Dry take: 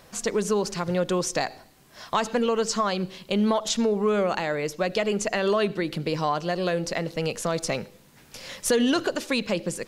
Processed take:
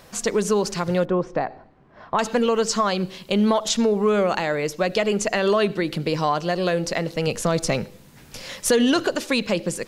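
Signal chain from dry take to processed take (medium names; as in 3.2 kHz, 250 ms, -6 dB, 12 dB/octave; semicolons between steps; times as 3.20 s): 1.05–2.19 s: low-pass 1.3 kHz 12 dB/octave; 7.27–8.42 s: bass shelf 220 Hz +6.5 dB; trim +3.5 dB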